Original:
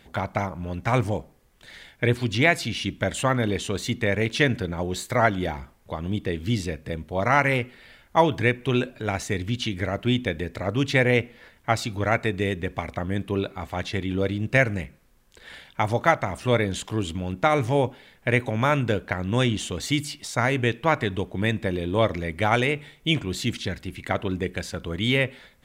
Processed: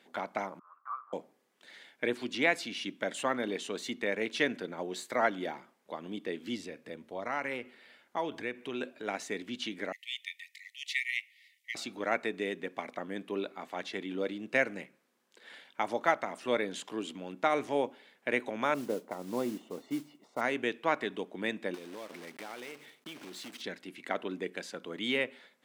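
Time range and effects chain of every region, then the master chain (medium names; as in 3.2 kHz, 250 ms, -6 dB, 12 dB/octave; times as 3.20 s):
0.59–1.13 s: power-law waveshaper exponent 0.7 + Butterworth band-pass 1.2 kHz, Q 5.9
6.56–8.81 s: peaking EQ 90 Hz +13 dB 0.45 oct + compression 2:1, threshold -26 dBFS
9.92–11.75 s: brick-wall FIR high-pass 1.8 kHz + treble shelf 10 kHz +7.5 dB
18.74–20.41 s: Savitzky-Golay filter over 65 samples + modulation noise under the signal 19 dB
21.74–23.64 s: block-companded coder 3-bit + band-stop 7 kHz, Q 19 + compression 10:1, threshold -31 dBFS
whole clip: high-pass 230 Hz 24 dB/octave; treble shelf 11 kHz -8 dB; trim -7.5 dB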